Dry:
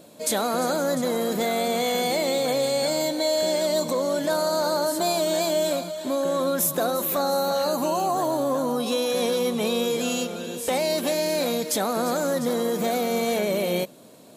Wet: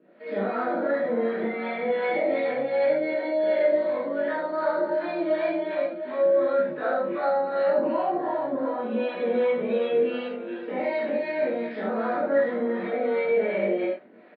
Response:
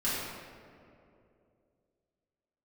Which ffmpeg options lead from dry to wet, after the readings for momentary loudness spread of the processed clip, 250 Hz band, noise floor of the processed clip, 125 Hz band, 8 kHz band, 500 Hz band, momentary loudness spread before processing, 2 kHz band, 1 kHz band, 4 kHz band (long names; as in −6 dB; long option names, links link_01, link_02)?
6 LU, −3.0 dB, −38 dBFS, can't be measured, below −40 dB, 0.0 dB, 2 LU, +0.5 dB, −3.0 dB, below −15 dB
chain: -filter_complex "[0:a]aresample=11025,aeval=exprs='sgn(val(0))*max(abs(val(0))-0.00188,0)':channel_layout=same,aresample=44100,flanger=delay=19.5:depth=3.1:speed=0.3,acrossover=split=580[link_01][link_02];[link_01]aeval=exprs='val(0)*(1-0.7/2+0.7/2*cos(2*PI*2.7*n/s))':channel_layout=same[link_03];[link_02]aeval=exprs='val(0)*(1-0.7/2-0.7/2*cos(2*PI*2.7*n/s))':channel_layout=same[link_04];[link_03][link_04]amix=inputs=2:normalize=0,areverse,acompressor=mode=upward:threshold=-48dB:ratio=2.5,areverse,highpass=frequency=220:width=0.5412,highpass=frequency=220:width=1.3066,equalizer=frequency=360:width_type=q:width=4:gain=6,equalizer=frequency=600:width_type=q:width=4:gain=5,equalizer=frequency=1100:width_type=q:width=4:gain=-5,equalizer=frequency=1900:width_type=q:width=4:gain=10,lowpass=frequency=2400:width=0.5412,lowpass=frequency=2400:width=1.3066[link_05];[1:a]atrim=start_sample=2205,atrim=end_sample=4410,asetrate=36603,aresample=44100[link_06];[link_05][link_06]afir=irnorm=-1:irlink=0,volume=-4dB"